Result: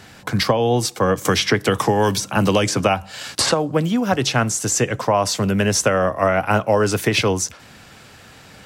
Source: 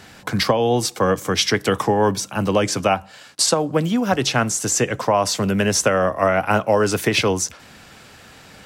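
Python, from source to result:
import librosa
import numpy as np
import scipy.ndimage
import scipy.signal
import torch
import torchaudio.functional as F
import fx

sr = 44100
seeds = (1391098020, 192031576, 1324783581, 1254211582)

y = fx.peak_eq(x, sr, hz=110.0, db=3.5, octaves=0.77)
y = fx.band_squash(y, sr, depth_pct=100, at=(1.25, 3.52))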